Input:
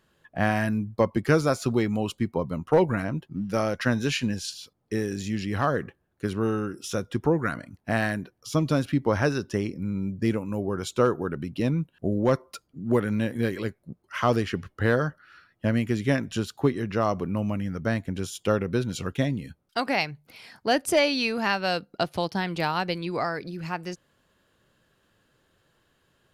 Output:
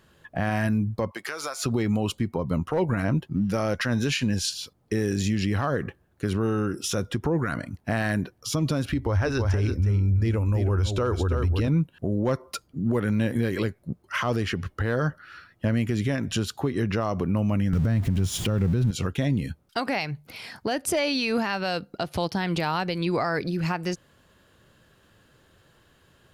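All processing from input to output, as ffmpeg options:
ffmpeg -i in.wav -filter_complex "[0:a]asettb=1/sr,asplit=3[link_01][link_02][link_03];[link_01]atrim=end=1.114[link_04];[link_02]atrim=start=1.11:end=1.63,asetpts=PTS-STARTPTS,afade=type=in:duration=0.004:curve=qsin,afade=type=out:start_time=0.516:duration=0.004:curve=qsin,highpass=870,acompressor=threshold=-34dB:ratio=12:attack=3.2:release=140:knee=1:detection=peak[link_05];[link_03]atrim=start=1.626[link_06];[link_04][link_05]acrossfade=duration=0.004:curve1=hsin:curve2=qsin[link_07];[link_07][link_06]acrossfade=duration=0.004:curve1=qsin:curve2=hsin,asettb=1/sr,asplit=3[link_08][link_09][link_10];[link_08]atrim=end=8.894[link_11];[link_09]atrim=start=8.89:end=11.68,asetpts=PTS-STARTPTS,afade=type=in:duration=0.004:curve=qsin,afade=type=out:start_time=2.786:duration=0.004:curve=qsin,lowshelf=frequency=110:width_type=q:width=3:gain=11,aecho=1:1:325:0.316,atrim=end_sample=123039,acrossover=split=6600[link_12][link_13];[link_13]acompressor=threshold=-54dB:ratio=4:attack=1:release=60[link_14];[link_12][link_14]amix=inputs=2:normalize=0[link_15];[link_10]atrim=start=11.676[link_16];[link_11][link_15]acrossfade=duration=0.004:curve1=hsin:curve2=qsin[link_17];[link_17][link_16]acrossfade=duration=0.004:curve1=qsin:curve2=hsin,asettb=1/sr,asplit=3[link_18][link_19][link_20];[link_18]atrim=end=17.734[link_21];[link_19]atrim=start=17.73:end=18.91,asetpts=PTS-STARTPTS,afade=type=in:duration=0.004:curve=qsin,afade=type=out:start_time=1.176:duration=0.004:curve=qsin,aeval=exprs='val(0)+0.5*0.0158*sgn(val(0))':channel_layout=same,bass=frequency=250:gain=12,treble=frequency=4000:gain=-1[link_22];[link_20]atrim=start=18.906[link_23];[link_21][link_22]acrossfade=duration=0.004:curve1=hsin:curve2=qsin[link_24];[link_24][link_23]acrossfade=duration=0.004:curve1=qsin:curve2=hsin,acompressor=threshold=-23dB:ratio=6,equalizer=frequency=78:width_type=o:width=1.5:gain=4.5,alimiter=limit=-23dB:level=0:latency=1:release=115,volume=7dB" out.wav

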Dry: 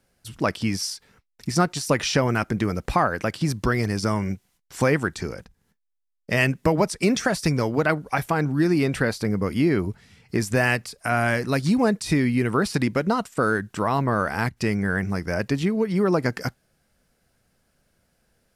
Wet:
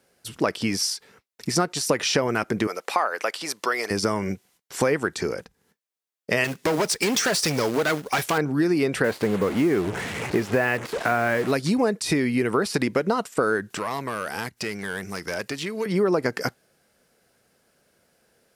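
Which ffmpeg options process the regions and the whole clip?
ffmpeg -i in.wav -filter_complex "[0:a]asettb=1/sr,asplit=3[link_01][link_02][link_03];[link_01]atrim=end=2.674[link_04];[link_02]atrim=start=2.67:end=3.91,asetpts=PTS-STARTPTS,afade=type=in:duration=0.004:curve=qsin,afade=type=out:start_time=1.236:duration=0.004:curve=qsin,highpass=650,bandreject=frequency=1600:width=18[link_05];[link_03]atrim=start=3.906[link_06];[link_04][link_05]acrossfade=duration=0.004:curve1=hsin:curve2=qsin[link_07];[link_07][link_06]acrossfade=duration=0.004:curve1=qsin:curve2=hsin,asettb=1/sr,asplit=3[link_08][link_09][link_10];[link_08]atrim=end=6.444[link_11];[link_09]atrim=start=6.44:end=8.38,asetpts=PTS-STARTPTS,afade=type=in:duration=0.004:curve=qsin,afade=type=out:start_time=1.936:duration=0.004:curve=qsin,equalizer=frequency=4700:width=0.41:gain=7.5,asoftclip=type=hard:threshold=-20.5dB,acrusher=bits=3:mode=log:mix=0:aa=0.000001[link_12];[link_10]atrim=start=8.376[link_13];[link_11][link_12]acrossfade=duration=0.004:curve1=hsin:curve2=qsin[link_14];[link_14][link_13]acrossfade=duration=0.004:curve1=qsin:curve2=hsin,asettb=1/sr,asplit=3[link_15][link_16][link_17];[link_15]atrim=end=9.044[link_18];[link_16]atrim=start=9.04:end=11.52,asetpts=PTS-STARTPTS,afade=type=in:duration=0.004:curve=qsin,afade=type=out:start_time=2.476:duration=0.004:curve=qsin,aeval=exprs='val(0)+0.5*0.0422*sgn(val(0))':channel_layout=same,lowpass=2500,acrusher=bits=5:mix=0:aa=0.5[link_19];[link_17]atrim=start=11.516[link_20];[link_18][link_19]acrossfade=duration=0.004:curve1=hsin:curve2=qsin[link_21];[link_21][link_20]acrossfade=duration=0.004:curve1=qsin:curve2=hsin,asettb=1/sr,asplit=3[link_22][link_23][link_24];[link_22]atrim=end=13.704[link_25];[link_23]atrim=start=13.7:end=15.86,asetpts=PTS-STARTPTS,afade=type=in:duration=0.004:curve=qsin,afade=type=out:start_time=2.156:duration=0.004:curve=qsin,highshelf=frequency=3500:gain=9,acrossover=split=1000|5500[link_26][link_27][link_28];[link_26]acompressor=threshold=-34dB:ratio=4[link_29];[link_27]acompressor=threshold=-35dB:ratio=4[link_30];[link_28]acompressor=threshold=-48dB:ratio=4[link_31];[link_29][link_30][link_31]amix=inputs=3:normalize=0,aeval=exprs='clip(val(0),-1,0.0376)':channel_layout=same[link_32];[link_24]atrim=start=15.856[link_33];[link_25][link_32]acrossfade=duration=0.004:curve1=hsin:curve2=qsin[link_34];[link_34][link_33]acrossfade=duration=0.004:curve1=qsin:curve2=hsin,highpass=frequency=280:poles=1,equalizer=frequency=430:width_type=o:width=0.71:gain=5,acompressor=threshold=-24dB:ratio=3,volume=4.5dB" out.wav

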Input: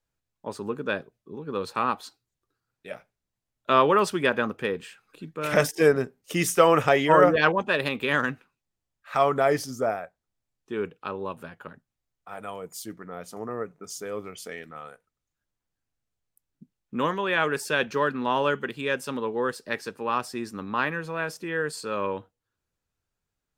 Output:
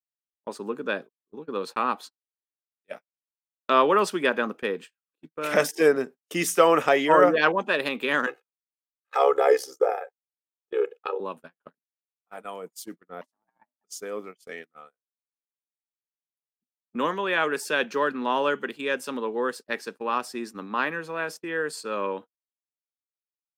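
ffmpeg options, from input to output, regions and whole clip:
ffmpeg -i in.wav -filter_complex "[0:a]asettb=1/sr,asplit=3[link_01][link_02][link_03];[link_01]atrim=end=8.264[link_04];[link_02]atrim=start=8.26:end=11.2,asetpts=PTS-STARTPTS,afade=type=in:duration=0.004:curve=qsin,afade=type=out:start_time=2.936:duration=0.004:curve=qsin,tremolo=f=67:d=0.788,lowshelf=frequency=330:width_type=q:width=3:gain=-12.5,aecho=1:1:2.4:0.83,atrim=end_sample=129654[link_05];[link_03]atrim=start=11.196[link_06];[link_04][link_05]acrossfade=duration=0.004:curve1=hsin:curve2=qsin[link_07];[link_07][link_06]acrossfade=duration=0.004:curve1=qsin:curve2=hsin,asettb=1/sr,asplit=3[link_08][link_09][link_10];[link_08]atrim=end=13.214[link_11];[link_09]atrim=start=13.21:end=13.84,asetpts=PTS-STARTPTS,afade=type=in:duration=0.004:curve=qsin,afade=type=out:start_time=0.626:duration=0.004:curve=qsin,lowshelf=frequency=160:gain=-7.5,acompressor=threshold=-37dB:ratio=2:attack=3.2:release=140:knee=1:detection=peak,aeval=exprs='val(0)*sin(2*PI*430*n/s)':channel_layout=same[link_12];[link_10]atrim=start=13.836[link_13];[link_11][link_12]acrossfade=duration=0.004:curve1=hsin:curve2=qsin[link_14];[link_14][link_13]acrossfade=duration=0.004:curve1=qsin:curve2=hsin,highpass=frequency=200:width=0.5412,highpass=frequency=200:width=1.3066,agate=range=-38dB:threshold=-38dB:ratio=16:detection=peak" out.wav

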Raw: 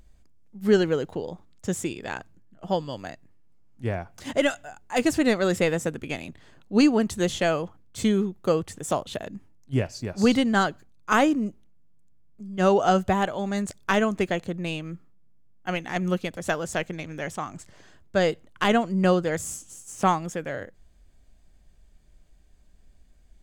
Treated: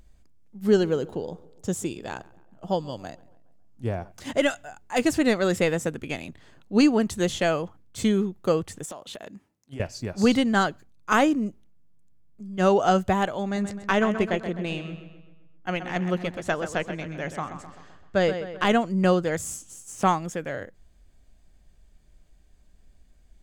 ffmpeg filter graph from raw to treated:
ffmpeg -i in.wav -filter_complex "[0:a]asettb=1/sr,asplit=3[link_01][link_02][link_03];[link_01]atrim=end=0.664[link_04];[link_02]atrim=start=0.66:end=4.12,asetpts=PTS-STARTPTS,afade=type=in:duration=0.004:curve=qsin,afade=type=out:start_time=3.456:duration=0.004:curve=qsin,equalizer=frequency=2000:width=1.5:gain=-7,asplit=2[link_05][link_06];[link_06]adelay=138,lowpass=frequency=2300:poles=1,volume=-22dB,asplit=2[link_07][link_08];[link_08]adelay=138,lowpass=frequency=2300:poles=1,volume=0.54,asplit=2[link_09][link_10];[link_10]adelay=138,lowpass=frequency=2300:poles=1,volume=0.54,asplit=2[link_11][link_12];[link_12]adelay=138,lowpass=frequency=2300:poles=1,volume=0.54[link_13];[link_05][link_07][link_09][link_11][link_13]amix=inputs=5:normalize=0,atrim=end_sample=152586[link_14];[link_03]atrim=start=4.116[link_15];[link_04][link_14]acrossfade=duration=0.004:curve1=hsin:curve2=qsin[link_16];[link_16][link_15]acrossfade=duration=0.004:curve1=qsin:curve2=hsin,asettb=1/sr,asplit=3[link_17][link_18][link_19];[link_17]atrim=end=8.854[link_20];[link_18]atrim=start=8.85:end=9.8,asetpts=PTS-STARTPTS,afade=type=in:duration=0.004:curve=qsin,afade=type=out:start_time=0.946:duration=0.004:curve=qsin,highpass=frequency=320:poles=1,acompressor=threshold=-34dB:ratio=10:attack=3.2:release=140:knee=1:detection=peak[link_21];[link_19]atrim=start=9.796[link_22];[link_20][link_21]acrossfade=duration=0.004:curve1=hsin:curve2=qsin[link_23];[link_23][link_22]acrossfade=duration=0.004:curve1=qsin:curve2=hsin,asettb=1/sr,asplit=3[link_24][link_25][link_26];[link_24]atrim=end=13.434[link_27];[link_25]atrim=start=13.43:end=18.67,asetpts=PTS-STARTPTS,afade=type=in:duration=0.004:curve=qsin,afade=type=out:start_time=5.236:duration=0.004:curve=qsin,highshelf=frequency=8000:gain=-11.5,asplit=2[link_28][link_29];[link_29]adelay=129,lowpass=frequency=4500:poles=1,volume=-9.5dB,asplit=2[link_30][link_31];[link_31]adelay=129,lowpass=frequency=4500:poles=1,volume=0.52,asplit=2[link_32][link_33];[link_33]adelay=129,lowpass=frequency=4500:poles=1,volume=0.52,asplit=2[link_34][link_35];[link_35]adelay=129,lowpass=frequency=4500:poles=1,volume=0.52,asplit=2[link_36][link_37];[link_37]adelay=129,lowpass=frequency=4500:poles=1,volume=0.52,asplit=2[link_38][link_39];[link_39]adelay=129,lowpass=frequency=4500:poles=1,volume=0.52[link_40];[link_28][link_30][link_32][link_34][link_36][link_38][link_40]amix=inputs=7:normalize=0,atrim=end_sample=231084[link_41];[link_26]atrim=start=18.666[link_42];[link_27][link_41]acrossfade=duration=0.004:curve1=hsin:curve2=qsin[link_43];[link_43][link_42]acrossfade=duration=0.004:curve1=qsin:curve2=hsin" out.wav

